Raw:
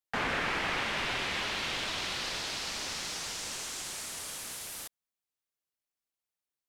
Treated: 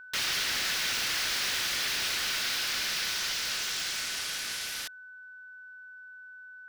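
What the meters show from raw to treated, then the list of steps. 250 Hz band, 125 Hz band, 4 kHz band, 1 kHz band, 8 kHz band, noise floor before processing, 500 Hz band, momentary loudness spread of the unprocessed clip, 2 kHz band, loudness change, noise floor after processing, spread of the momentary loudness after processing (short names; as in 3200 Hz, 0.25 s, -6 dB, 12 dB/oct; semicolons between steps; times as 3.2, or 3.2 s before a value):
-6.5 dB, -5.5 dB, +6.5 dB, -3.5 dB, +5.5 dB, under -85 dBFS, -6.0 dB, 8 LU, +3.0 dB, +4.5 dB, -48 dBFS, 19 LU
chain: wrapped overs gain 32 dB; band shelf 2800 Hz +10 dB 2.4 oct; whine 1500 Hz -45 dBFS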